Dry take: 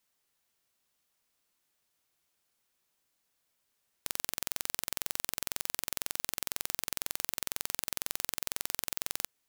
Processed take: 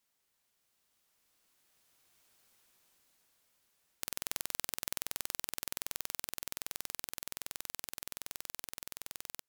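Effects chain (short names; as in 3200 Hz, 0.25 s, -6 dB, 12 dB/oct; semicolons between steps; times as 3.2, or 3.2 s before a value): Doppler pass-by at 2.42, 12 m/s, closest 9.1 m; limiter -17.5 dBFS, peak gain reduction 5.5 dB; gain +9 dB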